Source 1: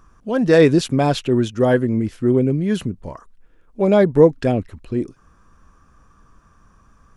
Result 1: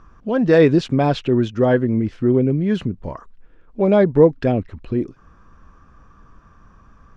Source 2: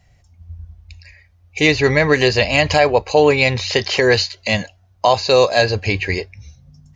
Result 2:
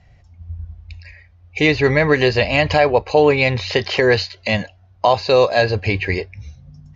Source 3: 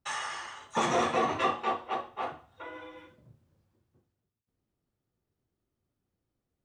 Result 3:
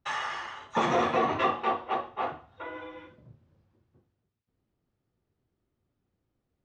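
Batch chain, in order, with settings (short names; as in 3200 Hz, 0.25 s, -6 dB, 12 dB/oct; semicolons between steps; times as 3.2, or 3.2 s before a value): in parallel at -1.5 dB: compressor, threshold -28 dBFS; on the sum: air absorption 150 m; gain -1 dB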